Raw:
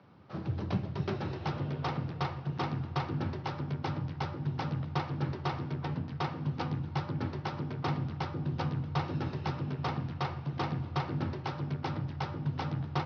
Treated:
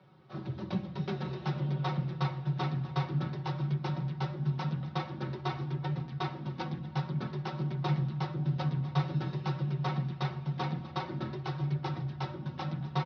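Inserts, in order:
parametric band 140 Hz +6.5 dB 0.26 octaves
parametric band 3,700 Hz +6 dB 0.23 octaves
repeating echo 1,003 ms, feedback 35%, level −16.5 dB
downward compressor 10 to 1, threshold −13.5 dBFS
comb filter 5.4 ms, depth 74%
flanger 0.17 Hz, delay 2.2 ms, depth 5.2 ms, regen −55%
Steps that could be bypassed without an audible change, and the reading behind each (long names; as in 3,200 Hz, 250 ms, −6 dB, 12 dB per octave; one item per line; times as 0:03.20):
downward compressor, threshold −13.5 dBFS: peak of its input −16.0 dBFS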